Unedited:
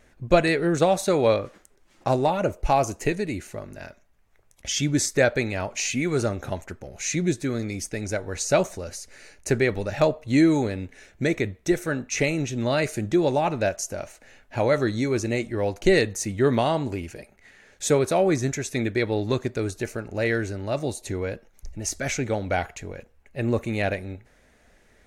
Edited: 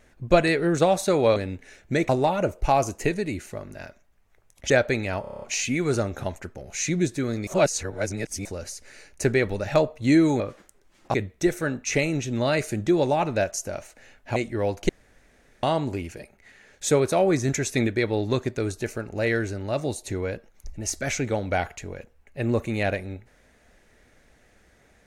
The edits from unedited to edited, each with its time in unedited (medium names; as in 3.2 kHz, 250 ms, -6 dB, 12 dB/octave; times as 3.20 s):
1.36–2.10 s: swap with 10.66–11.39 s
4.71–5.17 s: delete
5.68 s: stutter 0.03 s, 8 plays
7.73–8.71 s: reverse
14.61–15.35 s: delete
15.88–16.62 s: room tone
18.47–18.86 s: gain +3 dB